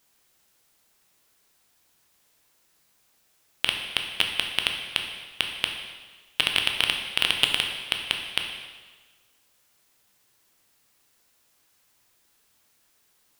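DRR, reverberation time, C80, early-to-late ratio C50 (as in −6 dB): 2.5 dB, 1.4 s, 6.5 dB, 5.0 dB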